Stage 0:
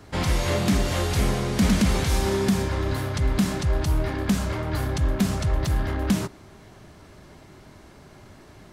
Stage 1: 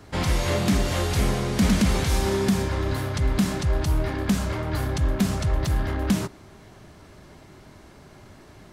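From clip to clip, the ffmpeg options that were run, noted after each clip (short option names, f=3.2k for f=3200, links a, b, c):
-af anull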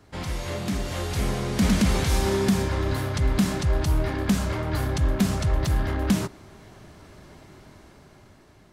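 -af "dynaudnorm=f=290:g=9:m=9dB,volume=-7.5dB"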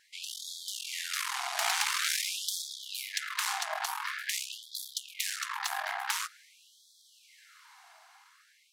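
-af "aeval=exprs='0.299*(cos(1*acos(clip(val(0)/0.299,-1,1)))-cos(1*PI/2))+0.0668*(cos(4*acos(clip(val(0)/0.299,-1,1)))-cos(4*PI/2))+0.0299*(cos(6*acos(clip(val(0)/0.299,-1,1)))-cos(6*PI/2))+0.0376*(cos(8*acos(clip(val(0)/0.299,-1,1)))-cos(8*PI/2))':c=same,afftfilt=real='re*gte(b*sr/1024,640*pow(3300/640,0.5+0.5*sin(2*PI*0.47*pts/sr)))':imag='im*gte(b*sr/1024,640*pow(3300/640,0.5+0.5*sin(2*PI*0.47*pts/sr)))':win_size=1024:overlap=0.75"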